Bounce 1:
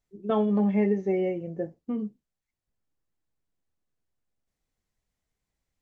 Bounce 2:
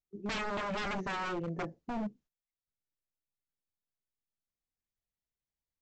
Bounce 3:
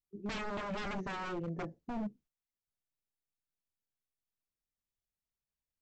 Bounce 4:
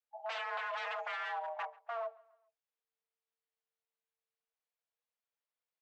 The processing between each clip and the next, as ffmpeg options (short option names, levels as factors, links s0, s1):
-af "agate=range=0.178:threshold=0.00126:ratio=16:detection=peak,aresample=16000,aeval=exprs='0.0299*(abs(mod(val(0)/0.0299+3,4)-2)-1)':c=same,aresample=44100"
-af "lowshelf=f=460:g=4.5,volume=0.562"
-filter_complex "[0:a]acrossover=split=190 3600:gain=0.224 1 0.2[s0][s1][s2];[s0][s1][s2]amix=inputs=3:normalize=0,afreqshift=450,asplit=2[s3][s4];[s4]adelay=138,lowpass=f=4700:p=1,volume=0.0668,asplit=2[s5][s6];[s6]adelay=138,lowpass=f=4700:p=1,volume=0.47,asplit=2[s7][s8];[s8]adelay=138,lowpass=f=4700:p=1,volume=0.47[s9];[s3][s5][s7][s9]amix=inputs=4:normalize=0,volume=1.12"